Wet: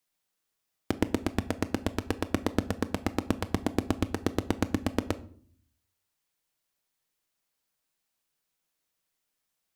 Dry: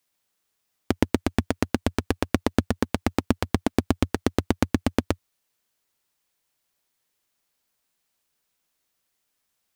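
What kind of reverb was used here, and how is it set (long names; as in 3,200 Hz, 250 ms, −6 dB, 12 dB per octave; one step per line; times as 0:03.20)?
rectangular room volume 640 cubic metres, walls furnished, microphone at 0.59 metres
level −5.5 dB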